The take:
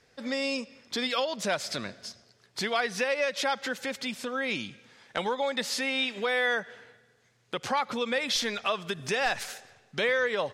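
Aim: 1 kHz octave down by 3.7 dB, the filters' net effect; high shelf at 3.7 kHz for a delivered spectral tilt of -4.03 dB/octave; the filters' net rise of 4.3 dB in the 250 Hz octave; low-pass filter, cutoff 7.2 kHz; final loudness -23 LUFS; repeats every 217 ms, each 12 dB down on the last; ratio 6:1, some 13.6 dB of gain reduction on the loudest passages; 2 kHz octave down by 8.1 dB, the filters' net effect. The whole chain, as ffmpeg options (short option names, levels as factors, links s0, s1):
-af "lowpass=7200,equalizer=f=250:t=o:g=5,equalizer=f=1000:t=o:g=-3,equalizer=f=2000:t=o:g=-8,highshelf=f=3700:g=-5,acompressor=threshold=0.00891:ratio=6,aecho=1:1:217|434|651:0.251|0.0628|0.0157,volume=11.2"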